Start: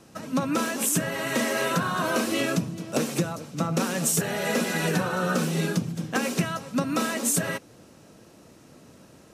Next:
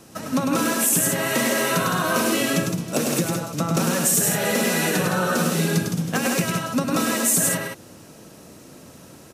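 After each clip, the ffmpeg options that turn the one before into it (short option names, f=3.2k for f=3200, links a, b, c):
-filter_complex "[0:a]highshelf=f=9k:g=9.5,aecho=1:1:102|163.3:0.631|0.501,asplit=2[a][b];[b]alimiter=limit=-17dB:level=0:latency=1:release=385,volume=3dB[c];[a][c]amix=inputs=2:normalize=0,volume=-3.5dB"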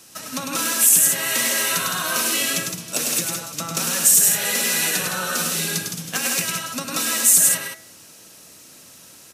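-af "tiltshelf=f=1.3k:g=-8.5,bandreject=f=72.29:t=h:w=4,bandreject=f=144.58:t=h:w=4,bandreject=f=216.87:t=h:w=4,bandreject=f=289.16:t=h:w=4,bandreject=f=361.45:t=h:w=4,bandreject=f=433.74:t=h:w=4,bandreject=f=506.03:t=h:w=4,bandreject=f=578.32:t=h:w=4,bandreject=f=650.61:t=h:w=4,bandreject=f=722.9:t=h:w=4,bandreject=f=795.19:t=h:w=4,bandreject=f=867.48:t=h:w=4,bandreject=f=939.77:t=h:w=4,bandreject=f=1.01206k:t=h:w=4,bandreject=f=1.08435k:t=h:w=4,bandreject=f=1.15664k:t=h:w=4,bandreject=f=1.22893k:t=h:w=4,bandreject=f=1.30122k:t=h:w=4,bandreject=f=1.37351k:t=h:w=4,bandreject=f=1.4458k:t=h:w=4,bandreject=f=1.51809k:t=h:w=4,bandreject=f=1.59038k:t=h:w=4,bandreject=f=1.66267k:t=h:w=4,bandreject=f=1.73496k:t=h:w=4,bandreject=f=1.80725k:t=h:w=4,bandreject=f=1.87954k:t=h:w=4,bandreject=f=1.95183k:t=h:w=4,bandreject=f=2.02412k:t=h:w=4,bandreject=f=2.09641k:t=h:w=4,bandreject=f=2.1687k:t=h:w=4,bandreject=f=2.24099k:t=h:w=4,bandreject=f=2.31328k:t=h:w=4,volume=-2dB"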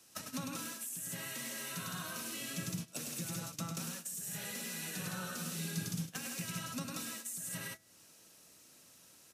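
-filter_complex "[0:a]areverse,acompressor=threshold=-26dB:ratio=16,areverse,agate=range=-15dB:threshold=-34dB:ratio=16:detection=peak,acrossover=split=210[a][b];[b]acompressor=threshold=-43dB:ratio=4[c];[a][c]amix=inputs=2:normalize=0"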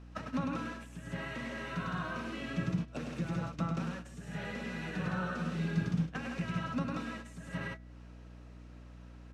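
-af "lowpass=1.8k,aeval=exprs='val(0)+0.00141*(sin(2*PI*60*n/s)+sin(2*PI*2*60*n/s)/2+sin(2*PI*3*60*n/s)/3+sin(2*PI*4*60*n/s)/4+sin(2*PI*5*60*n/s)/5)':c=same,volume=7.5dB"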